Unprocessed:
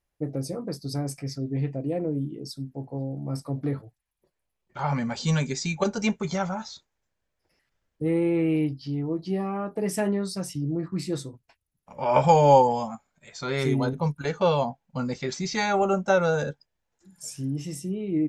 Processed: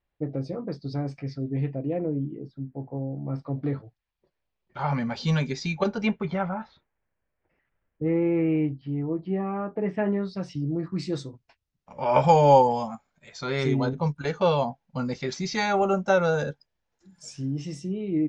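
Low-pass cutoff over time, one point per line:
low-pass 24 dB/octave
1.70 s 3.9 kHz
2.39 s 2.2 kHz
3.09 s 2.2 kHz
3.74 s 4.9 kHz
5.73 s 4.9 kHz
6.48 s 2.5 kHz
10.07 s 2.5 kHz
10.71 s 6.3 kHz

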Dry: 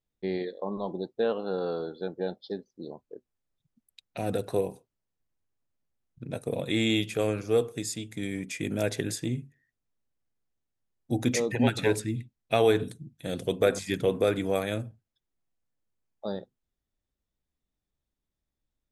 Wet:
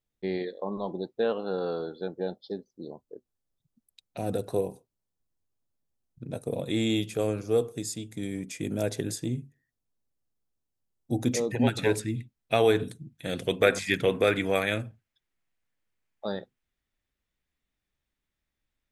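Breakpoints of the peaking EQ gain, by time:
peaking EQ 2.1 kHz 1.5 oct
1.91 s +1.5 dB
2.51 s -6.5 dB
11.36 s -6.5 dB
11.98 s +1.5 dB
12.91 s +1.5 dB
13.56 s +10 dB

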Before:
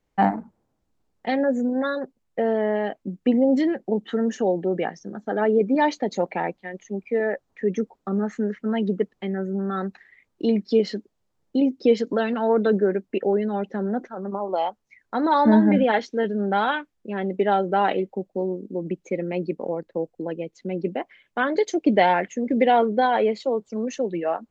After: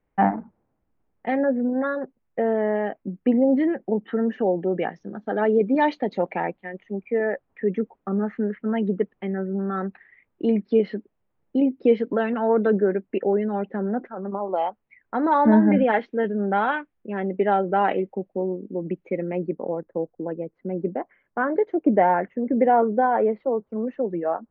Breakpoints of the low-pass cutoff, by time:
low-pass 24 dB/octave
4.28 s 2.4 kHz
5.46 s 4.3 kHz
6.78 s 2.6 kHz
19.13 s 2.6 kHz
19.64 s 1.6 kHz

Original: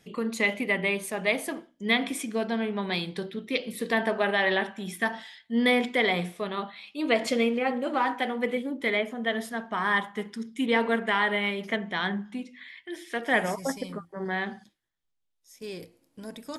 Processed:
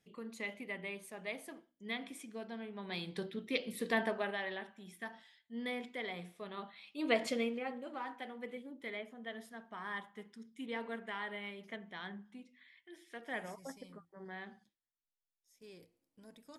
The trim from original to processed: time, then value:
2.73 s -16.5 dB
3.19 s -7 dB
4.00 s -7 dB
4.53 s -17.5 dB
6.16 s -17.5 dB
7.13 s -7 dB
7.91 s -17 dB

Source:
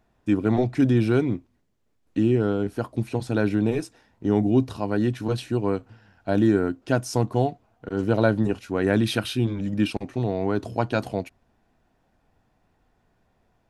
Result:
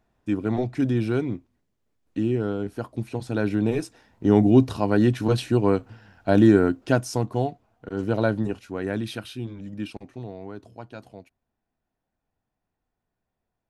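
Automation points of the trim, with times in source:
3.17 s -3.5 dB
4.33 s +4 dB
6.79 s +4 dB
7.20 s -2.5 dB
8.32 s -2.5 dB
9.28 s -9.5 dB
10.08 s -9.5 dB
10.76 s -16 dB

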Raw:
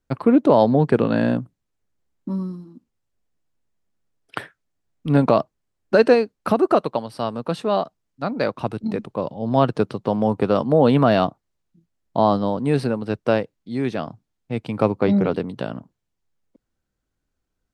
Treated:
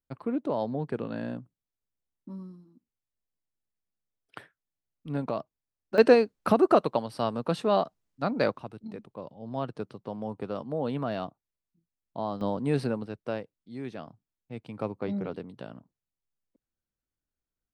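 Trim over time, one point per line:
-15 dB
from 5.98 s -3.5 dB
from 8.58 s -15.5 dB
from 12.41 s -7 dB
from 13.06 s -14 dB

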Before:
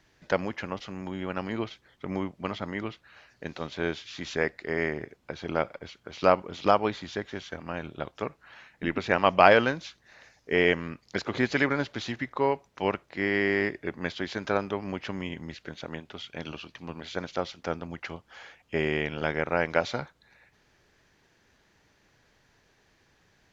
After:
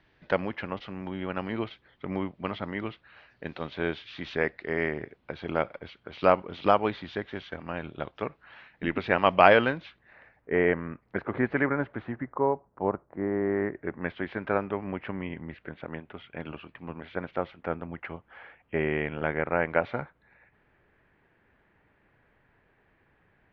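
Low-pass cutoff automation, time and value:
low-pass 24 dB/octave
9.59 s 3.7 kHz
10.52 s 1.9 kHz
11.91 s 1.9 kHz
12.53 s 1.2 kHz
13.40 s 1.2 kHz
14.13 s 2.4 kHz

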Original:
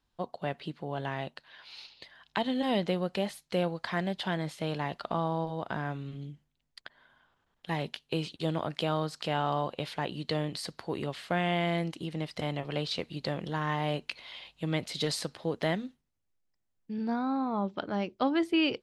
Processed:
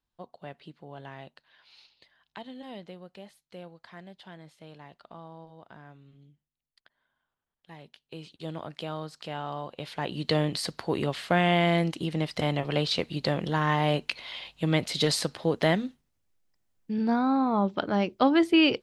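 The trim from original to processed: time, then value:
1.72 s -8.5 dB
2.99 s -15 dB
7.88 s -15 dB
8.50 s -5.5 dB
9.67 s -5.5 dB
10.28 s +6 dB

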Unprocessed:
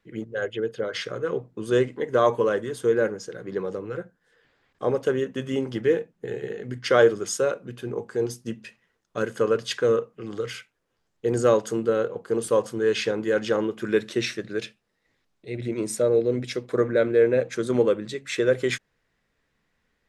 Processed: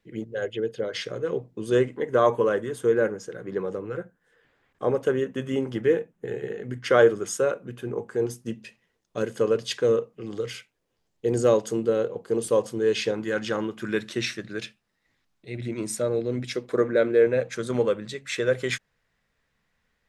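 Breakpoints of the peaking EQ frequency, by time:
peaking EQ -6.5 dB 0.83 oct
1.3 kHz
from 1.75 s 4.6 kHz
from 8.49 s 1.4 kHz
from 13.14 s 450 Hz
from 16.54 s 100 Hz
from 17.27 s 330 Hz

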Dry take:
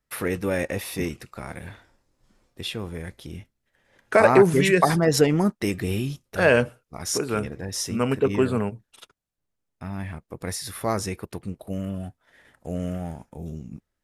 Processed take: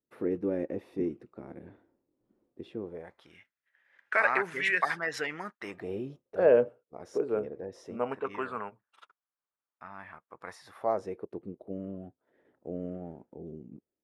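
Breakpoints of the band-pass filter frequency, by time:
band-pass filter, Q 2.1
2.79 s 330 Hz
3.36 s 1.8 kHz
5.53 s 1.8 kHz
5.96 s 480 Hz
7.84 s 480 Hz
8.28 s 1.2 kHz
10.42 s 1.2 kHz
11.36 s 370 Hz

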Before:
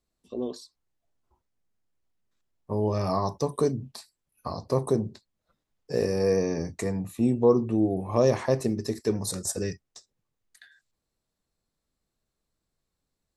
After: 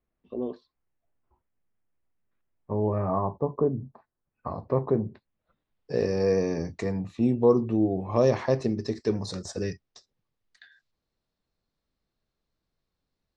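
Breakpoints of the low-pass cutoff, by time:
low-pass 24 dB/octave
2.73 s 2.6 kHz
3.38 s 1.1 kHz
3.88 s 1.1 kHz
4.52 s 2.4 kHz
5.08 s 2.4 kHz
6.11 s 5.4 kHz

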